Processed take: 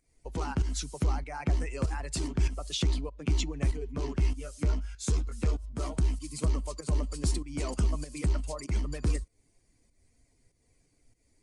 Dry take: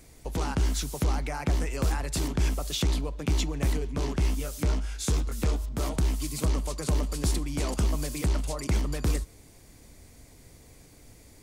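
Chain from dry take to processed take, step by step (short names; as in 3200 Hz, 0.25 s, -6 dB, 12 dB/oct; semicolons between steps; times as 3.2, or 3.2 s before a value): per-bin expansion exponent 1.5; pump 97 bpm, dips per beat 1, -10 dB, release 0.205 s; downsampling 22050 Hz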